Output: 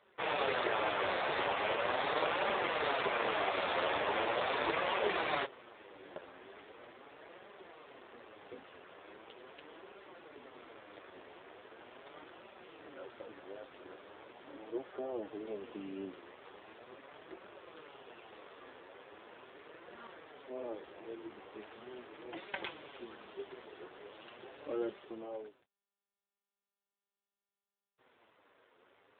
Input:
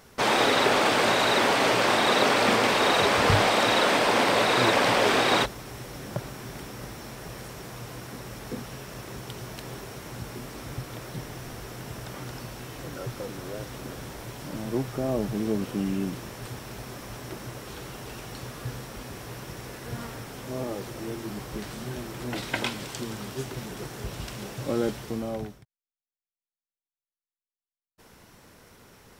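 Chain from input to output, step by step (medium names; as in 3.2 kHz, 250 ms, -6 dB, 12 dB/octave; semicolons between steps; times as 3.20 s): flange 0.4 Hz, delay 4.9 ms, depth 6.7 ms, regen -14%; high-pass 320 Hz 24 dB/octave; trim -5 dB; AMR-NB 7.4 kbps 8 kHz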